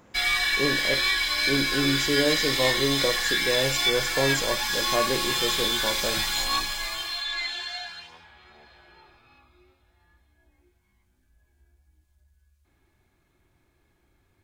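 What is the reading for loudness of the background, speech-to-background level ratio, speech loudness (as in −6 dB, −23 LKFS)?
−24.0 LKFS, −4.5 dB, −28.5 LKFS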